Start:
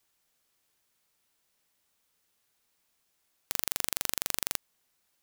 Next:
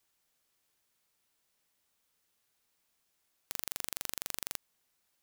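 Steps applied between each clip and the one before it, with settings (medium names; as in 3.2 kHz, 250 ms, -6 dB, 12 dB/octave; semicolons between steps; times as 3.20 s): peak limiter -5.5 dBFS, peak gain reduction 4.5 dB; trim -2.5 dB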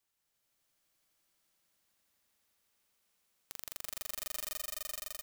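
echo with a slow build-up 85 ms, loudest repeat 5, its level -3.5 dB; trim -6.5 dB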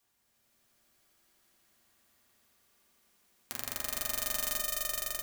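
reverberation RT60 0.55 s, pre-delay 4 ms, DRR -0.5 dB; trim +6 dB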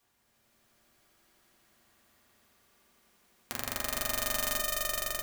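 treble shelf 3.4 kHz -6.5 dB; trim +6.5 dB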